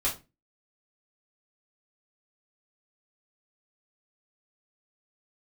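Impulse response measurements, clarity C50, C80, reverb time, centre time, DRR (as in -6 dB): 11.0 dB, 18.5 dB, 0.25 s, 20 ms, -7.5 dB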